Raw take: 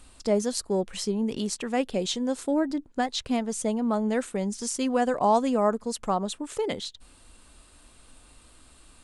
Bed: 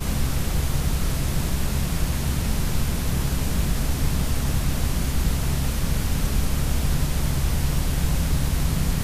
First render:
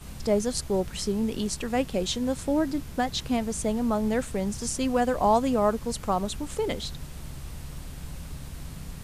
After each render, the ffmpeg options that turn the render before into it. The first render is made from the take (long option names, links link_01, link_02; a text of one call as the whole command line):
ffmpeg -i in.wav -i bed.wav -filter_complex "[1:a]volume=-16.5dB[link_01];[0:a][link_01]amix=inputs=2:normalize=0" out.wav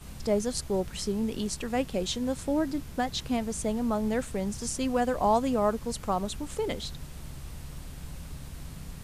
ffmpeg -i in.wav -af "volume=-2.5dB" out.wav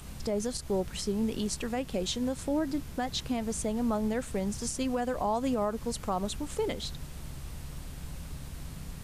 ffmpeg -i in.wav -af "alimiter=limit=-21dB:level=0:latency=1:release=114,acompressor=mode=upward:threshold=-50dB:ratio=2.5" out.wav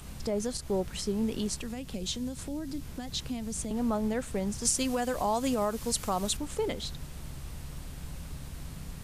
ffmpeg -i in.wav -filter_complex "[0:a]asettb=1/sr,asplit=3[link_01][link_02][link_03];[link_01]atrim=end=1.524[link_04];[link_02]atrim=start=1.52:end=3.71,asetpts=PTS-STARTPTS,afade=type=in:duration=0.004:curve=qsin,afade=type=out:start_time=2.186:duration=0.004:curve=qsin,acrossover=split=250|3000[link_05][link_06][link_07];[link_06]acompressor=threshold=-43dB:ratio=4:attack=3.2:release=140:knee=2.83:detection=peak[link_08];[link_05][link_08][link_07]amix=inputs=3:normalize=0[link_09];[link_03]atrim=start=3.706[link_10];[link_04][link_09]acrossfade=duration=0.004:curve1=hsin:curve2=qsin[link_11];[link_11][link_10]acrossfade=duration=0.004:curve1=qsin:curve2=hsin,asettb=1/sr,asplit=3[link_12][link_13][link_14];[link_12]atrim=end=4.654[link_15];[link_13]atrim=start=4.65:end=6.37,asetpts=PTS-STARTPTS,afade=type=in:duration=0.004:curve=qsin,afade=type=out:start_time=1.716:duration=0.004:curve=qsin,highshelf=frequency=2800:gain=10[link_16];[link_14]atrim=start=6.366[link_17];[link_15][link_16]acrossfade=duration=0.004:curve1=hsin:curve2=qsin[link_18];[link_18][link_17]acrossfade=duration=0.004:curve1=qsin:curve2=hsin" out.wav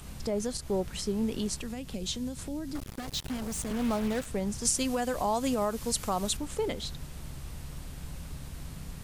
ffmpeg -i in.wav -filter_complex "[0:a]asettb=1/sr,asplit=3[link_01][link_02][link_03];[link_01]atrim=end=2.754[link_04];[link_02]atrim=start=2.75:end=4.26,asetpts=PTS-STARTPTS,afade=type=in:duration=0.004:curve=qsin,afade=type=out:start_time=1.506:duration=0.004:curve=qsin,acrusher=bits=5:mix=0:aa=0.5[link_05];[link_03]atrim=start=4.256[link_06];[link_04][link_05]acrossfade=duration=0.004:curve1=hsin:curve2=qsin[link_07];[link_07][link_06]acrossfade=duration=0.004:curve1=qsin:curve2=hsin" out.wav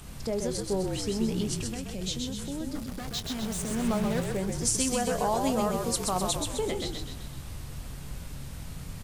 ffmpeg -i in.wav -filter_complex "[0:a]asplit=2[link_01][link_02];[link_02]adelay=22,volume=-13dB[link_03];[link_01][link_03]amix=inputs=2:normalize=0,asplit=8[link_04][link_05][link_06][link_07][link_08][link_09][link_10][link_11];[link_05]adelay=128,afreqshift=-42,volume=-4dB[link_12];[link_06]adelay=256,afreqshift=-84,volume=-9.8dB[link_13];[link_07]adelay=384,afreqshift=-126,volume=-15.7dB[link_14];[link_08]adelay=512,afreqshift=-168,volume=-21.5dB[link_15];[link_09]adelay=640,afreqshift=-210,volume=-27.4dB[link_16];[link_10]adelay=768,afreqshift=-252,volume=-33.2dB[link_17];[link_11]adelay=896,afreqshift=-294,volume=-39.1dB[link_18];[link_04][link_12][link_13][link_14][link_15][link_16][link_17][link_18]amix=inputs=8:normalize=0" out.wav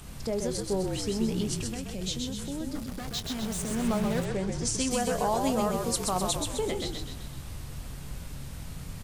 ffmpeg -i in.wav -filter_complex "[0:a]asettb=1/sr,asplit=3[link_01][link_02][link_03];[link_01]atrim=end=4.254[link_04];[link_02]atrim=start=4.25:end=4.91,asetpts=PTS-STARTPTS,afade=type=in:duration=0.004:curve=qsin,afade=type=out:start_time=0.656:duration=0.004:curve=qsin,lowpass=6900[link_05];[link_03]atrim=start=4.906[link_06];[link_04][link_05]acrossfade=duration=0.004:curve1=hsin:curve2=qsin[link_07];[link_07][link_06]acrossfade=duration=0.004:curve1=qsin:curve2=hsin" out.wav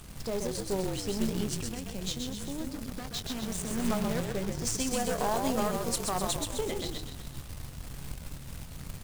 ffmpeg -i in.wav -af "aeval=exprs='if(lt(val(0),0),0.447*val(0),val(0))':channel_layout=same,acrusher=bits=3:mode=log:mix=0:aa=0.000001" out.wav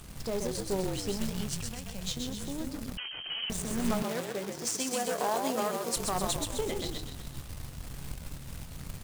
ffmpeg -i in.wav -filter_complex "[0:a]asettb=1/sr,asplit=3[link_01][link_02][link_03];[link_01]atrim=end=1.164[link_04];[link_02]atrim=start=1.16:end=2.17,asetpts=PTS-STARTPTS,afade=type=in:duration=0.004:curve=qsin,afade=type=out:start_time=1.006:duration=0.004:curve=qsin,equalizer=frequency=330:width_type=o:width=0.77:gain=-13.5[link_05];[link_03]atrim=start=2.166[link_06];[link_04][link_05]acrossfade=duration=0.004:curve1=hsin:curve2=qsin[link_07];[link_07][link_06]acrossfade=duration=0.004:curve1=qsin:curve2=hsin,asettb=1/sr,asplit=3[link_08][link_09][link_10];[link_08]atrim=end=2.974[link_11];[link_09]atrim=start=2.97:end=3.5,asetpts=PTS-STARTPTS,afade=type=in:duration=0.004:curve=qsin,afade=type=out:start_time=0.526:duration=0.004:curve=qsin,lowpass=frequency=2700:width_type=q:width=0.5098,lowpass=frequency=2700:width_type=q:width=0.6013,lowpass=frequency=2700:width_type=q:width=0.9,lowpass=frequency=2700:width_type=q:width=2.563,afreqshift=-3200[link_12];[link_10]atrim=start=3.496[link_13];[link_11][link_12]acrossfade=duration=0.004:curve1=hsin:curve2=qsin[link_14];[link_14][link_13]acrossfade=duration=0.004:curve1=qsin:curve2=hsin,asettb=1/sr,asplit=3[link_15][link_16][link_17];[link_15]atrim=end=4.024[link_18];[link_16]atrim=start=4.02:end=5.96,asetpts=PTS-STARTPTS,afade=type=in:duration=0.004:curve=qsin,afade=type=out:start_time=1.936:duration=0.004:curve=qsin,highpass=270[link_19];[link_17]atrim=start=5.956[link_20];[link_18][link_19]acrossfade=duration=0.004:curve1=hsin:curve2=qsin[link_21];[link_21][link_20]acrossfade=duration=0.004:curve1=qsin:curve2=hsin" out.wav